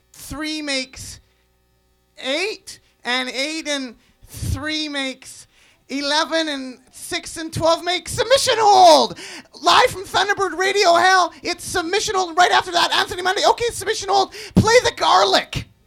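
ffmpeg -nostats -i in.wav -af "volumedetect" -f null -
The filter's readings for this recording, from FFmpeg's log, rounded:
mean_volume: -19.2 dB
max_volume: -2.1 dB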